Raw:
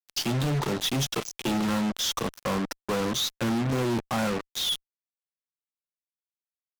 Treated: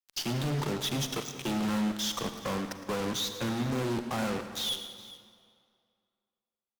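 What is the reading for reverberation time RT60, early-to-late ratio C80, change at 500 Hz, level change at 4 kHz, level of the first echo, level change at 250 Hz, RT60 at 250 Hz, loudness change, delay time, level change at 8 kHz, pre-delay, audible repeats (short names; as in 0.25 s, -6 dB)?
2.2 s, 8.5 dB, -4.0 dB, -4.5 dB, -14.5 dB, -3.5 dB, 2.1 s, -4.0 dB, 0.111 s, -4.5 dB, 36 ms, 3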